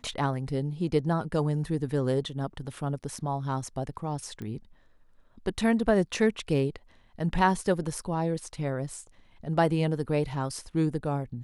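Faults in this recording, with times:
4.42 s: pop -26 dBFS

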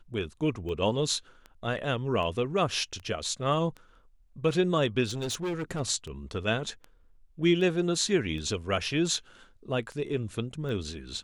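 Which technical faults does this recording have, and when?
tick 78 rpm -28 dBFS
5.05–5.81 s: clipped -28.5 dBFS

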